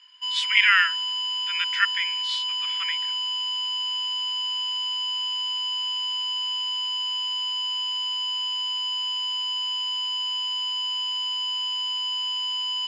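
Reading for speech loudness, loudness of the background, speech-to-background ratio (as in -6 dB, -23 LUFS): -23.5 LUFS, -25.0 LUFS, 1.5 dB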